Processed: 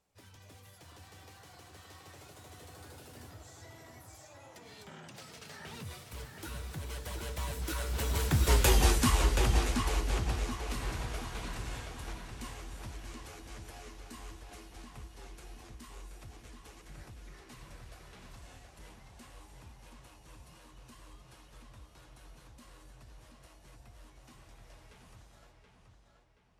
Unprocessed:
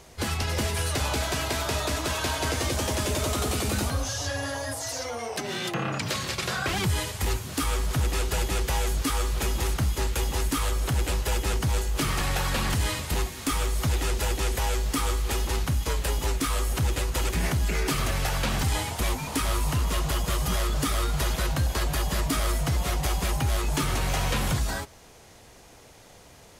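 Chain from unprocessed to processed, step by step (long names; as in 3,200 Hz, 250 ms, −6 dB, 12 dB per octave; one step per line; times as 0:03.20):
source passing by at 0:08.70, 52 m/s, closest 12 metres
flanger 1.3 Hz, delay 4.7 ms, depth 9 ms, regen −68%
feedback echo with a low-pass in the loop 727 ms, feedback 44%, low-pass 4,800 Hz, level −4.5 dB
level +8.5 dB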